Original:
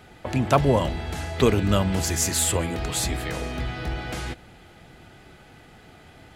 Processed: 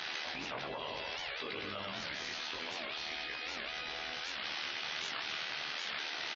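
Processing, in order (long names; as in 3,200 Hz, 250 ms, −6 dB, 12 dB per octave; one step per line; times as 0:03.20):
linear delta modulator 32 kbit/s, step −31 dBFS
resonant band-pass 3,900 Hz, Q 0.91
high-shelf EQ 4,300 Hz −8.5 dB
on a send: repeating echo 100 ms, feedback 57%, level −4.5 dB
on the sum: brickwall limiter −32 dBFS, peak gain reduction 8 dB
in parallel at +2 dB: compressor whose output falls as the input rises −46 dBFS, ratio −0.5
on the sum: amplitude modulation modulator 77 Hz, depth 85%
double-tracking delay 20 ms −4.5 dB
gate on every frequency bin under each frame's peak −20 dB strong
echo machine with several playback heads 66 ms, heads all three, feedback 62%, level −22 dB
wow of a warped record 78 rpm, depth 250 cents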